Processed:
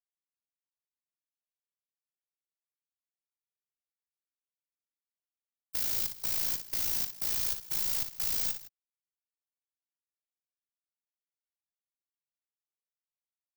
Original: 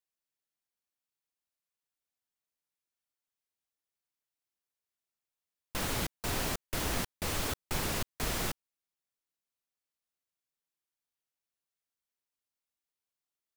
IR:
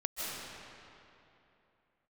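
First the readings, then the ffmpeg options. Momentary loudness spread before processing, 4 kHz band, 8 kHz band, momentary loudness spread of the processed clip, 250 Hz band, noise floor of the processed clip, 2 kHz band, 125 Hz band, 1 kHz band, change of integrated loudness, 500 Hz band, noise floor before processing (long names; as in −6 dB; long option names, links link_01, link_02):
3 LU, −1.0 dB, +1.5 dB, 3 LU, −14.5 dB, below −85 dBFS, −8.5 dB, −13.0 dB, −12.5 dB, +5.0 dB, −13.5 dB, below −85 dBFS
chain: -filter_complex "[0:a]acrossover=split=6100[link_01][link_02];[link_02]acompressor=threshold=-54dB:ratio=4:attack=1:release=60[link_03];[link_01][link_03]amix=inputs=2:normalize=0,aemphasis=mode=production:type=bsi,afftfilt=real='re*gte(hypot(re,im),0.01)':imag='im*gte(hypot(re,im),0.01)':win_size=1024:overlap=0.75,bass=frequency=250:gain=4,treble=frequency=4000:gain=-1,bandreject=frequency=1200:width=5.7,acrossover=split=130|3000[link_04][link_05][link_06];[link_05]acompressor=threshold=-46dB:ratio=6[link_07];[link_04][link_07][link_06]amix=inputs=3:normalize=0,asplit=2[link_08][link_09];[link_09]acrusher=bits=2:mix=0:aa=0.5,volume=-9dB[link_10];[link_08][link_10]amix=inputs=2:normalize=0,aexciter=amount=1.6:drive=8.1:freq=4800,aeval=exprs='1.26*(cos(1*acos(clip(val(0)/1.26,-1,1)))-cos(1*PI/2))+0.447*(cos(7*acos(clip(val(0)/1.26,-1,1)))-cos(7*PI/2))+0.224*(cos(8*acos(clip(val(0)/1.26,-1,1)))-cos(8*PI/2))':channel_layout=same,tremolo=f=56:d=0.889,asoftclip=type=tanh:threshold=-26dB,aecho=1:1:60|162:0.376|0.133"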